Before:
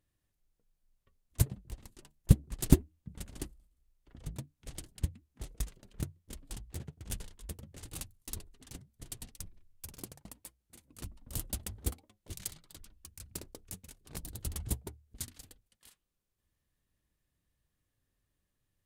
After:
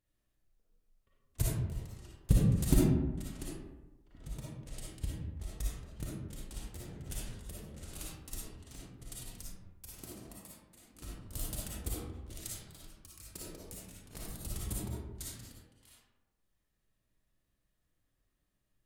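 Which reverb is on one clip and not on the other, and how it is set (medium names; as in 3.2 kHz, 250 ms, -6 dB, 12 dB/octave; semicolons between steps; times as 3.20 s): algorithmic reverb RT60 1.1 s, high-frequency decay 0.45×, pre-delay 15 ms, DRR -6.5 dB; trim -6 dB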